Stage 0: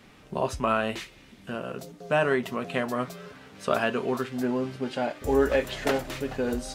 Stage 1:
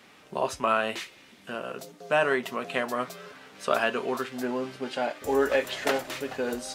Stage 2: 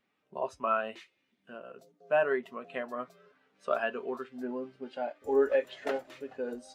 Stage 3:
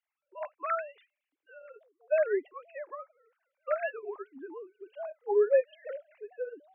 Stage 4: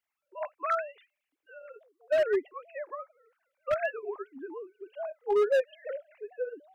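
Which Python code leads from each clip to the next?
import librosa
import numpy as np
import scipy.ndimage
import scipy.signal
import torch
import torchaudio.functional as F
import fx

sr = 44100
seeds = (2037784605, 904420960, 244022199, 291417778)

y1 = fx.highpass(x, sr, hz=480.0, slope=6)
y1 = F.gain(torch.from_numpy(y1), 2.0).numpy()
y2 = fx.spectral_expand(y1, sr, expansion=1.5)
y2 = F.gain(torch.from_numpy(y2), -6.0).numpy()
y3 = fx.sine_speech(y2, sr)
y4 = np.clip(y3, -10.0 ** (-23.0 / 20.0), 10.0 ** (-23.0 / 20.0))
y4 = F.gain(torch.from_numpy(y4), 2.5).numpy()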